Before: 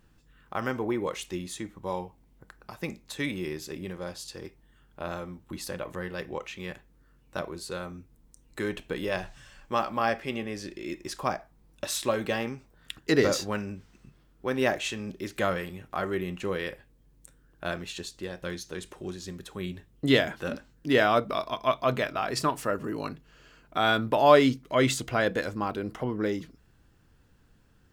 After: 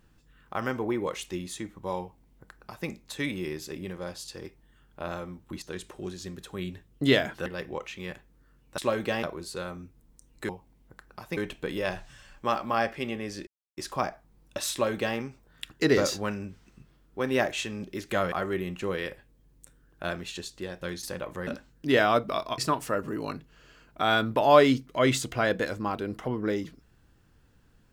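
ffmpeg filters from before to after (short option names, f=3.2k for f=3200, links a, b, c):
-filter_complex "[0:a]asplit=13[a][b][c][d][e][f][g][h][i][j][k][l][m];[a]atrim=end=5.622[n];[b]atrim=start=18.638:end=20.482[o];[c]atrim=start=6.058:end=7.382[p];[d]atrim=start=11.988:end=12.442[q];[e]atrim=start=7.378:end=8.642[r];[f]atrim=start=1.998:end=2.882[s];[g]atrim=start=8.638:end=10.74,asetpts=PTS-STARTPTS,afade=t=out:st=2.098:d=0.004:c=hsin[t];[h]atrim=start=10.74:end=11.04,asetpts=PTS-STARTPTS,volume=0[u];[i]atrim=start=11.04:end=15.592,asetpts=PTS-STARTPTS,afade=t=in:d=0.004:c=hsin[v];[j]atrim=start=15.928:end=18.642[w];[k]atrim=start=5.618:end=6.062[x];[l]atrim=start=20.478:end=21.592[y];[m]atrim=start=22.338[z];[n][o]acrossfade=d=0.004:c1=hsin:c2=hsin[aa];[aa][p]acrossfade=d=0.004:c1=hsin:c2=hsin[ab];[ab][q]acrossfade=d=0.004:c1=hsin:c2=hsin[ac];[ac][r]acrossfade=d=0.004:c1=hsin:c2=hsin[ad];[ad][s]acrossfade=d=0.004:c1=hsin:c2=hsin[ae];[t][u][v]concat=n=3:v=0:a=1[af];[ae][af]acrossfade=d=0.004:c1=hsin:c2=hsin[ag];[ag][w]acrossfade=d=0.004:c1=hsin:c2=hsin[ah];[ah][x]acrossfade=d=0.004:c1=hsin:c2=hsin[ai];[ai][y]acrossfade=d=0.004:c1=hsin:c2=hsin[aj];[aj][z]acrossfade=d=0.004:c1=hsin:c2=hsin"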